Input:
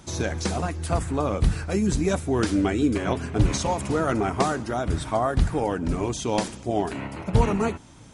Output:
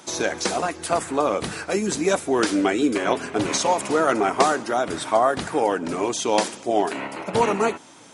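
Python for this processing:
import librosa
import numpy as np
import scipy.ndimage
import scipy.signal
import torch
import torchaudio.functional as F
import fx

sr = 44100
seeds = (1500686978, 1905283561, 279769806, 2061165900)

y = scipy.signal.sosfilt(scipy.signal.butter(2, 350.0, 'highpass', fs=sr, output='sos'), x)
y = F.gain(torch.from_numpy(y), 6.0).numpy()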